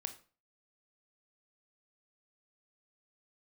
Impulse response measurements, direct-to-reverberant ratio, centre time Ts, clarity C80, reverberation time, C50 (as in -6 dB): 8.0 dB, 7 ms, 18.0 dB, 0.40 s, 13.5 dB